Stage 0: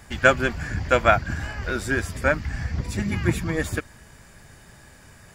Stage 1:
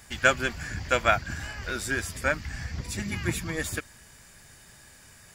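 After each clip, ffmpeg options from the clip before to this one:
ffmpeg -i in.wav -af "highshelf=frequency=2100:gain=10.5,volume=-7.5dB" out.wav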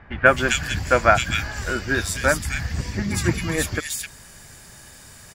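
ffmpeg -i in.wav -filter_complex "[0:a]acrossover=split=2200[link_01][link_02];[link_02]adelay=260[link_03];[link_01][link_03]amix=inputs=2:normalize=0,volume=8dB" out.wav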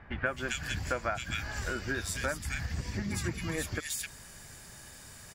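ffmpeg -i in.wav -af "acompressor=threshold=-26dB:ratio=4,volume=-5dB" out.wav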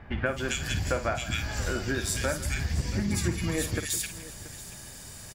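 ffmpeg -i in.wav -filter_complex "[0:a]equalizer=frequency=1500:width=0.86:gain=-5.5,asplit=2[link_01][link_02];[link_02]aecho=0:1:53|161|680:0.299|0.15|0.141[link_03];[link_01][link_03]amix=inputs=2:normalize=0,volume=6dB" out.wav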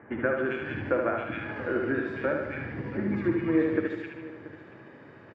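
ffmpeg -i in.wav -af "highpass=frequency=130:width=0.5412,highpass=frequency=130:width=1.3066,equalizer=frequency=170:width_type=q:width=4:gain=-9,equalizer=frequency=320:width_type=q:width=4:gain=9,equalizer=frequency=480:width_type=q:width=4:gain=5,equalizer=frequency=740:width_type=q:width=4:gain=-4,lowpass=frequency=2000:width=0.5412,lowpass=frequency=2000:width=1.3066,aecho=1:1:74|148|222|296|370|444|518:0.596|0.304|0.155|0.079|0.0403|0.0206|0.0105" out.wav

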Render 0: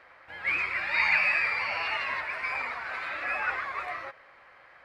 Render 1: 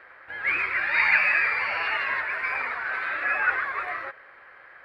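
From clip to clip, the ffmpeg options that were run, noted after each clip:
ffmpeg -i in.wav -af "equalizer=frequency=400:width_type=o:width=0.67:gain=6,equalizer=frequency=1600:width_type=o:width=0.67:gain=9,equalizer=frequency=6300:width_type=o:width=0.67:gain=-8" out.wav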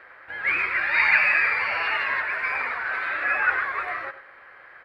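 ffmpeg -i in.wav -filter_complex "[0:a]asplit=2[link_01][link_02];[link_02]adelay=93.29,volume=-13dB,highshelf=frequency=4000:gain=-2.1[link_03];[link_01][link_03]amix=inputs=2:normalize=0,volume=1.5dB" out.wav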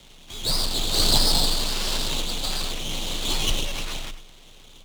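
ffmpeg -i in.wav -af "aeval=exprs='abs(val(0))':channel_layout=same,bass=frequency=250:gain=3,treble=frequency=4000:gain=12,afreqshift=22,volume=-2.5dB" out.wav

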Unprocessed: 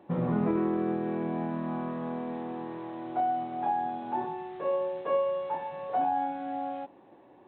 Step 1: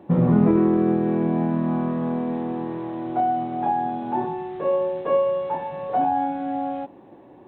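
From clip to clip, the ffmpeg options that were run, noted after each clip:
ffmpeg -i in.wav -af "lowshelf=frequency=410:gain=9,volume=4dB" out.wav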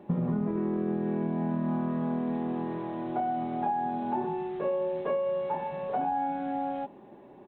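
ffmpeg -i in.wav -af "aecho=1:1:4.9:0.44,acompressor=threshold=-22dB:ratio=10,volume=-3.5dB" out.wav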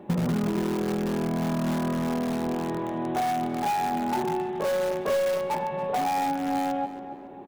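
ffmpeg -i in.wav -filter_complex "[0:a]asplit=2[link_01][link_02];[link_02]aeval=exprs='(mod(18.8*val(0)+1,2)-1)/18.8':channel_layout=same,volume=-9.5dB[link_03];[link_01][link_03]amix=inputs=2:normalize=0,asplit=2[link_04][link_05];[link_05]adelay=278,lowpass=frequency=3100:poles=1,volume=-12dB,asplit=2[link_06][link_07];[link_07]adelay=278,lowpass=frequency=3100:poles=1,volume=0.46,asplit=2[link_08][link_09];[link_09]adelay=278,lowpass=frequency=3100:poles=1,volume=0.46,asplit=2[link_10][link_11];[link_11]adelay=278,lowpass=frequency=3100:poles=1,volume=0.46,asplit=2[link_12][link_13];[link_13]adelay=278,lowpass=frequency=3100:poles=1,volume=0.46[link_14];[link_04][link_06][link_08][link_10][link_12][link_14]amix=inputs=6:normalize=0,volume=2.5dB" out.wav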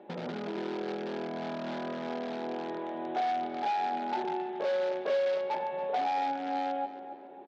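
ffmpeg -i in.wav -af "highpass=420,equalizer=frequency=1100:width_type=q:width=4:gain=-9,equalizer=frequency=1900:width_type=q:width=4:gain=-3,equalizer=frequency=2700:width_type=q:width=4:gain=-3,lowpass=frequency=4300:width=0.5412,lowpass=frequency=4300:width=1.3066,volume=-2dB" out.wav

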